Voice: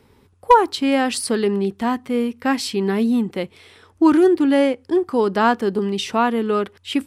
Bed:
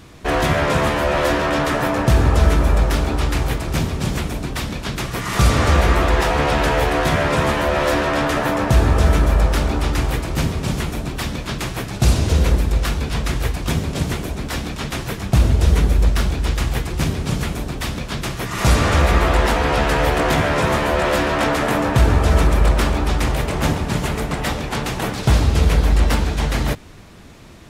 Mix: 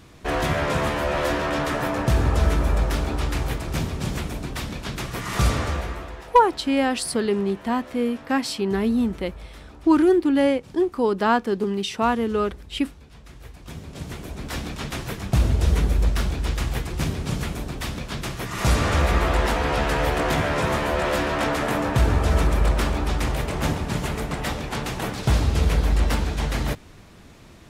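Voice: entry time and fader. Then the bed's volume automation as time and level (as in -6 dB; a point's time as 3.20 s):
5.85 s, -3.0 dB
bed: 5.47 s -5.5 dB
6.31 s -25 dB
13.20 s -25 dB
14.57 s -5 dB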